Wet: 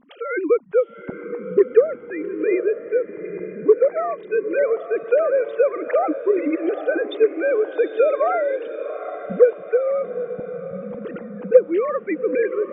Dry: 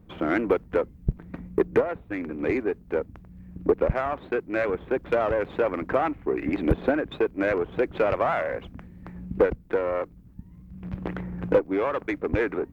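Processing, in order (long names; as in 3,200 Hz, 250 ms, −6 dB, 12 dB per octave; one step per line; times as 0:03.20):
three sine waves on the formant tracks
0:08.69–0:09.30: first difference
feedback delay with all-pass diffusion 817 ms, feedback 45%, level −11 dB
level +5.5 dB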